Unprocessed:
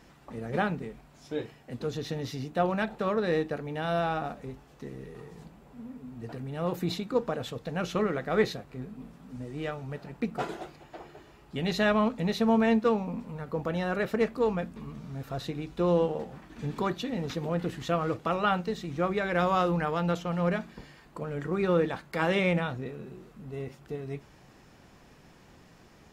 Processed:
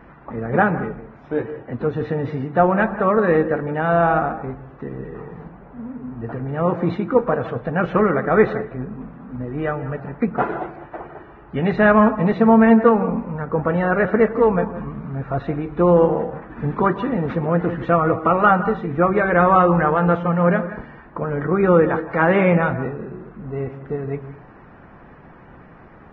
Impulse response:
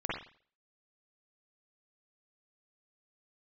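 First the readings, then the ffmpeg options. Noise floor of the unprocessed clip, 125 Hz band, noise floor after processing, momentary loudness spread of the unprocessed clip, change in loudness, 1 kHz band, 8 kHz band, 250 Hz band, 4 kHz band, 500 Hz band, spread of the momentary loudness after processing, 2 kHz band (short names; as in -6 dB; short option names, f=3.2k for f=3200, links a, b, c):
-56 dBFS, +10.5 dB, -45 dBFS, 18 LU, +11.0 dB, +12.5 dB, under -20 dB, +11.0 dB, n/a, +11.0 dB, 18 LU, +11.0 dB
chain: -filter_complex "[0:a]crystalizer=i=5.5:c=0,acontrast=46,lowpass=f=1.6k:w=0.5412,lowpass=f=1.6k:w=1.3066,asplit=2[a][b];[1:a]atrim=start_sample=2205,highshelf=f=3.9k:g=-10.5,adelay=112[c];[b][c]afir=irnorm=-1:irlink=0,volume=-17.5dB[d];[a][d]amix=inputs=2:normalize=0,volume=4.5dB" -ar 22050 -c:a libvorbis -b:a 16k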